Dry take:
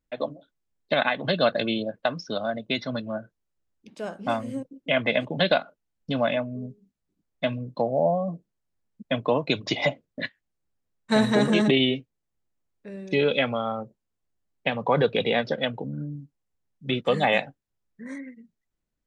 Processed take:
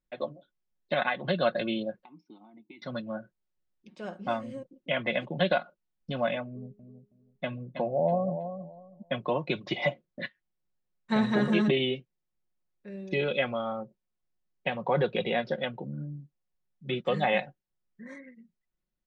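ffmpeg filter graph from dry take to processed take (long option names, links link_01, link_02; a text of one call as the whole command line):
ffmpeg -i in.wav -filter_complex "[0:a]asettb=1/sr,asplit=3[link_01][link_02][link_03];[link_01]atrim=end=2.044[link_04];[link_02]atrim=start=2.04:end=2.82,asetpts=PTS-STARTPTS,afade=type=in:duration=0.004:curve=qsin,afade=type=out:start_time=0.776:duration=0.004:curve=qsin,acompressor=threshold=-27dB:ratio=6:attack=3.2:release=140:knee=1:detection=peak,asplit=3[link_05][link_06][link_07];[link_05]bandpass=frequency=300:width_type=q:width=8,volume=0dB[link_08];[link_06]bandpass=frequency=870:width_type=q:width=8,volume=-6dB[link_09];[link_07]bandpass=frequency=2240:width_type=q:width=8,volume=-9dB[link_10];[link_08][link_09][link_10]amix=inputs=3:normalize=0[link_11];[link_03]atrim=start=2.816[link_12];[link_04][link_11]acrossfade=duration=0.004:curve1=hsin:curve2=qsin[link_13];[link_13][link_12]acrossfade=duration=0.004:curve1=qsin:curve2=hsin,asettb=1/sr,asplit=3[link_14][link_15][link_16];[link_14]atrim=end=6.474[link_17];[link_15]atrim=start=6.47:end=9.12,asetpts=PTS-STARTPTS,afade=type=in:duration=0.004:curve=qsin,afade=type=out:start_time=2.646:duration=0.004:curve=qsin,lowpass=frequency=2700:poles=1,aecho=1:1:322|644|966:0.335|0.0703|0.0148,atrim=end_sample=116865[link_18];[link_16]atrim=start=9.116[link_19];[link_17][link_18]acrossfade=duration=0.004:curve1=hsin:curve2=qsin[link_20];[link_20][link_19]acrossfade=duration=0.004:curve1=qsin:curve2=hsin,acrossover=split=3700[link_21][link_22];[link_22]acompressor=threshold=-44dB:ratio=4:attack=1:release=60[link_23];[link_21][link_23]amix=inputs=2:normalize=0,lowpass=5400,aecho=1:1:5.5:0.54,volume=-5.5dB" out.wav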